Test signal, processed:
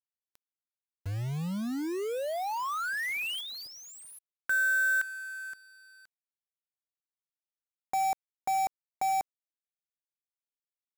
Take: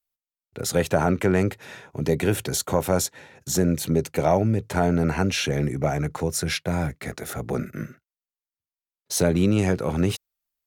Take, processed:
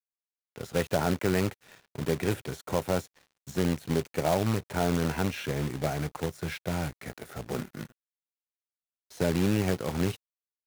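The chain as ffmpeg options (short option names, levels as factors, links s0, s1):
-filter_complex "[0:a]acrossover=split=2900[s0][s1];[s1]acompressor=threshold=0.01:ratio=4:attack=1:release=60[s2];[s0][s2]amix=inputs=2:normalize=0,aeval=exprs='sgn(val(0))*max(abs(val(0))-0.00794,0)':c=same,acrusher=bits=2:mode=log:mix=0:aa=0.000001,volume=0.501"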